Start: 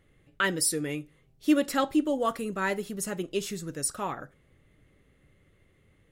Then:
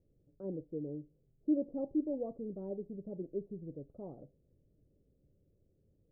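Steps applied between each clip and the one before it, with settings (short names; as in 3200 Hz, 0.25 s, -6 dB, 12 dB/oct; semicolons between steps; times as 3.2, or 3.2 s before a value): steep low-pass 610 Hz 36 dB/oct; gain -8 dB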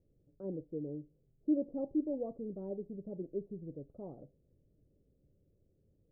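nothing audible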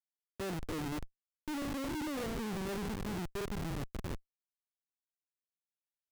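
stepped spectrum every 0.1 s; Schmitt trigger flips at -46 dBFS; gain +6 dB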